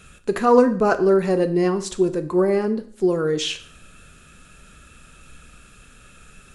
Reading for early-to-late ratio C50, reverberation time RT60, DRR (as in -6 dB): 14.0 dB, 0.50 s, 8.5 dB